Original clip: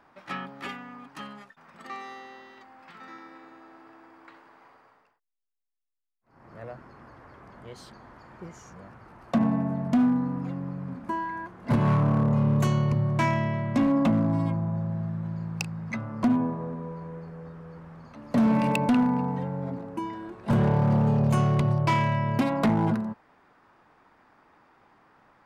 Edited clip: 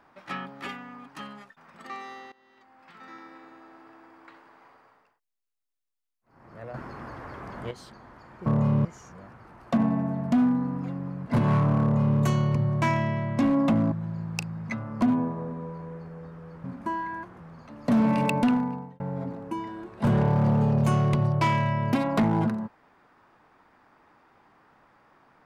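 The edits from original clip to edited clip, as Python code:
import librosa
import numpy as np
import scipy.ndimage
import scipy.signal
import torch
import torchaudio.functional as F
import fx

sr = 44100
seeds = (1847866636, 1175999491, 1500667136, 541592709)

y = fx.edit(x, sr, fx.fade_in_from(start_s=2.32, length_s=0.87, floor_db=-19.5),
    fx.clip_gain(start_s=6.74, length_s=0.97, db=9.5),
    fx.move(start_s=10.87, length_s=0.76, to_s=17.86),
    fx.duplicate(start_s=12.18, length_s=0.39, to_s=8.46),
    fx.cut(start_s=14.29, length_s=0.85),
    fx.fade_out_span(start_s=18.91, length_s=0.55), tone=tone)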